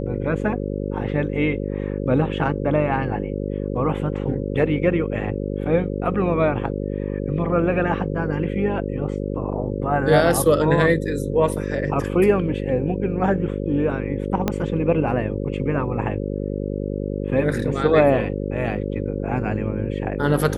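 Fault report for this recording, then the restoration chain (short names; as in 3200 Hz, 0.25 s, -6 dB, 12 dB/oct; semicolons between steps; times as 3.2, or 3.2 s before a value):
buzz 50 Hz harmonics 11 -26 dBFS
14.48 pop -7 dBFS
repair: de-click; de-hum 50 Hz, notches 11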